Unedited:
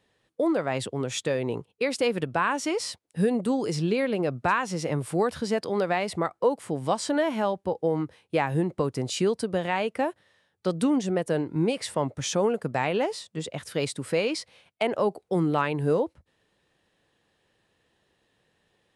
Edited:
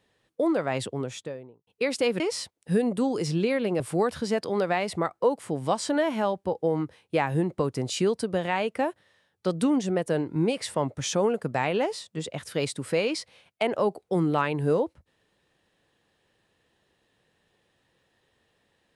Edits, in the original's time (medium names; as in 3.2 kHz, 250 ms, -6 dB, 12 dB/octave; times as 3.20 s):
0.78–1.67 s: studio fade out
2.20–2.68 s: delete
4.28–5.00 s: delete